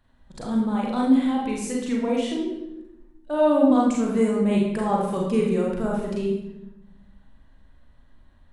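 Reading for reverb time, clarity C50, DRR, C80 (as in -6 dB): 0.95 s, 1.5 dB, -3.0 dB, 4.5 dB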